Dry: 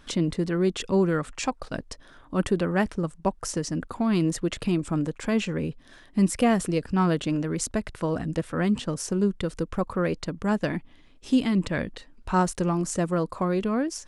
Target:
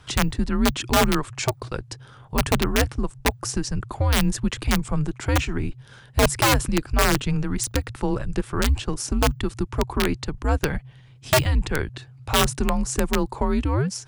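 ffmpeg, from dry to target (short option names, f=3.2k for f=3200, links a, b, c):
-af "aeval=exprs='(mod(5.62*val(0)+1,2)-1)/5.62':c=same,afreqshift=-140,volume=3.5dB"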